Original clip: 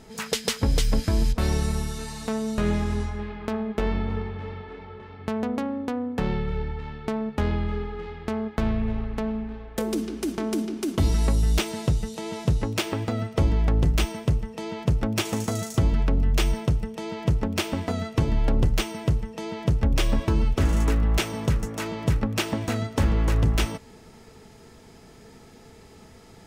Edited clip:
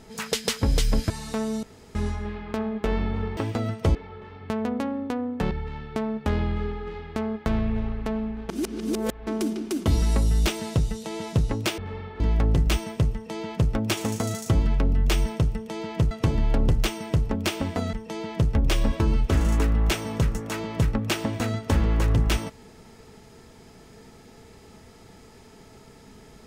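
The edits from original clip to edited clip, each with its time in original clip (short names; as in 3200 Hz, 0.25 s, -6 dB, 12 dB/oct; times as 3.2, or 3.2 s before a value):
1.1–2.04 cut
2.57–2.89 room tone
4.31–4.73 swap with 12.9–13.48
6.29–6.63 cut
9.61–10.39 reverse
17.39–18.05 move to 19.21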